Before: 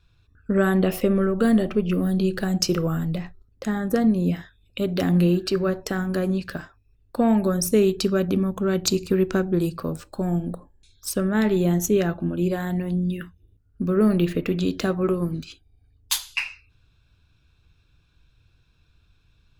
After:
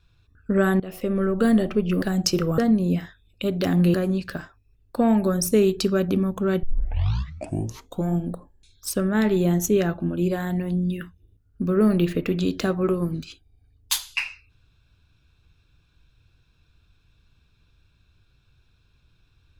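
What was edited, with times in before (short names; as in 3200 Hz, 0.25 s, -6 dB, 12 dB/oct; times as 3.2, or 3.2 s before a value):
0.8–1.32 fade in, from -21.5 dB
2.02–2.38 cut
2.94–3.94 cut
5.3–6.14 cut
8.83 tape start 1.49 s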